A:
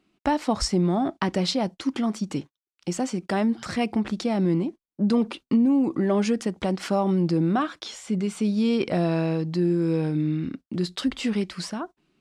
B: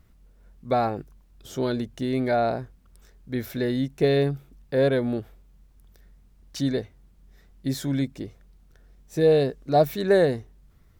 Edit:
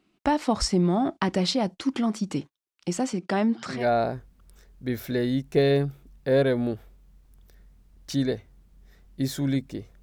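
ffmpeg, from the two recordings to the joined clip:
-filter_complex "[0:a]asettb=1/sr,asplit=3[a][b][c];[a]atrim=end=3.134[d];[b]atrim=start=3.13:end=3.87,asetpts=PTS-STARTPTS,afade=t=in:d=0.004:c=qsin,afade=t=out:st=0.736:d=0.004:c=qsin,highpass=130,lowpass=7.1k[e];[c]atrim=start=3.866[f];[d][e]acrossfade=d=0.004:c1=hsin:c2=qsin[g];[g][f]acrossfade=d=0.004:c1=qsin:c2=hsin,apad=whole_dur=10.02,atrim=end=10.02,atrim=end=3.87,asetpts=PTS-STARTPTS[h];[1:a]atrim=start=2.13:end=8.48,asetpts=PTS-STARTPTS[i];[h][i]acrossfade=d=0.2:c1=tri:c2=tri"

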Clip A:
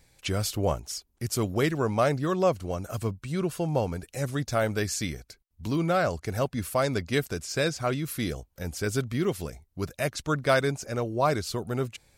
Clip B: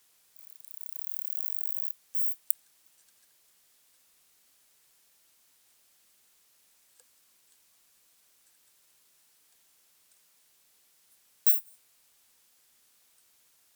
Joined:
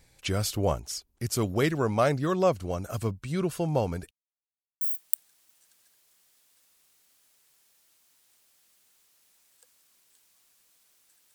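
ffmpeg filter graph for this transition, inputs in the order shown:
-filter_complex "[0:a]apad=whole_dur=11.34,atrim=end=11.34,asplit=2[a][b];[a]atrim=end=4.11,asetpts=PTS-STARTPTS,afade=t=out:st=4.106:d=0.004:c=hsin[c];[b]atrim=start=4.11:end=4.81,asetpts=PTS-STARTPTS,volume=0[d];[1:a]atrim=start=2.18:end=8.71,asetpts=PTS-STARTPTS,afade=t=in:d=0.004:c=hsin[e];[c][d][e]concat=n=3:v=0:a=1"

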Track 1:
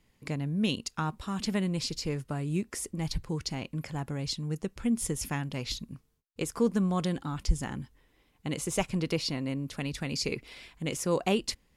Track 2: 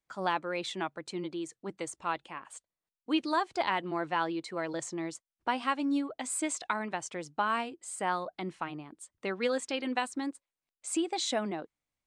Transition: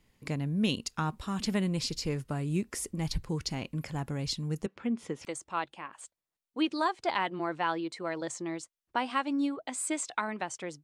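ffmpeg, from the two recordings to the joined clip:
-filter_complex "[0:a]asettb=1/sr,asplit=3[a][b][c];[a]atrim=end=4.664[d];[b]atrim=start=4.66:end=5.25,asetpts=PTS-STARTPTS,afade=t=in:d=0.004:c=qsin,afade=t=out:st=0.586:d=0.004:c=qsin,highpass=250,lowpass=2.8k[e];[c]atrim=start=5.246[f];[d][e]acrossfade=d=0.004:c1=hsin:c2=qsin[g];[g][f]acrossfade=d=0.004:c1=qsin:c2=hsin,apad=whole_dur=10.83,atrim=end=10.83,atrim=end=5.252[h];[1:a]atrim=start=1.768:end=7.35[i];[h][i]acrossfade=d=0.004:c1=hsin:c2=hsin"

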